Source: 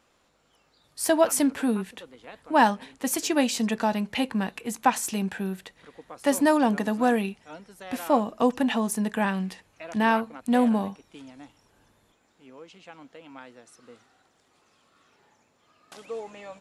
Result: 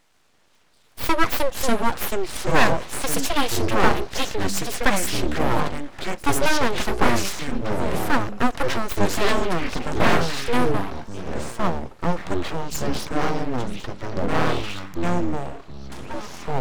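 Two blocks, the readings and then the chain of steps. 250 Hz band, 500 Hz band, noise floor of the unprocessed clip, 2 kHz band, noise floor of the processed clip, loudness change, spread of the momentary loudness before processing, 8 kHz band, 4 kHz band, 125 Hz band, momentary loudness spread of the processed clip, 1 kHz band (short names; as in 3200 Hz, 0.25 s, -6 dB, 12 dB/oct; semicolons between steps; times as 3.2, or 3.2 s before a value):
-0.5 dB, +3.5 dB, -67 dBFS, +7.0 dB, -57 dBFS, +1.0 dB, 16 LU, +3.0 dB, +8.0 dB, +10.5 dB, 11 LU, +3.5 dB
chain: echoes that change speed 0.141 s, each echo -6 st, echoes 3; full-wave rectifier; gain +4.5 dB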